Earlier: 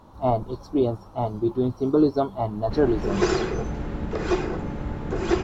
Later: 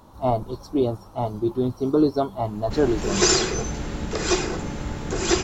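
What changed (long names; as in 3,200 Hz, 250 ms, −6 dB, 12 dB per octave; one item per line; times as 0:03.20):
background: remove low-pass filter 1,600 Hz 6 dB per octave
master: add high-shelf EQ 5,500 Hz +10.5 dB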